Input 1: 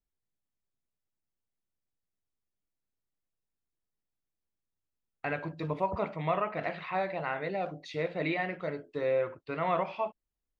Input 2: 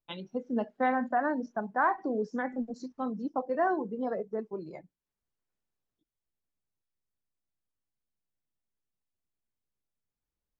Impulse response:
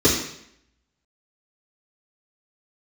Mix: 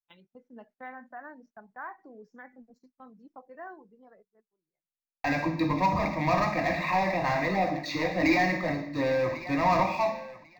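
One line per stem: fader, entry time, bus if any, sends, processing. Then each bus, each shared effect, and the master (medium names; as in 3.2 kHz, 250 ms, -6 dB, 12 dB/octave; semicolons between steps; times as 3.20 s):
0.0 dB, 0.00 s, send -20 dB, echo send -13 dB, peaking EQ 63 Hz -14.5 dB 1.8 oct; waveshaping leveller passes 3; static phaser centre 2.1 kHz, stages 8
-14.5 dB, 0.00 s, no send, no echo send, graphic EQ 250/500/2000/4000 Hz -4/-3/+6/-4 dB; auto duck -24 dB, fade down 1.55 s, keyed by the first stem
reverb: on, RT60 0.70 s, pre-delay 3 ms
echo: feedback delay 1096 ms, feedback 17%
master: gate -59 dBFS, range -15 dB; decimation joined by straight lines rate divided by 2×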